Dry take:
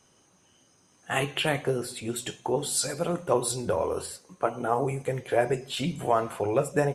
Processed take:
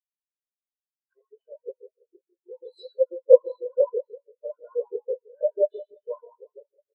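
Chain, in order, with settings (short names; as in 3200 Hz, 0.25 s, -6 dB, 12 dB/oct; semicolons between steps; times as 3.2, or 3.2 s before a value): ending faded out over 1.10 s; comb 2 ms, depth 63%; shoebox room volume 3500 m³, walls mixed, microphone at 4.9 m; sample leveller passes 2; bell 4100 Hz +11.5 dB 0.51 oct; LFO high-pass saw up 6.1 Hz 270–1600 Hz; 1.13–2.55 tape spacing loss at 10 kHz 35 dB; on a send: feedback echo 0.144 s, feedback 51%, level -17.5 dB; on the sum: spectral expander 4:1; gain -7 dB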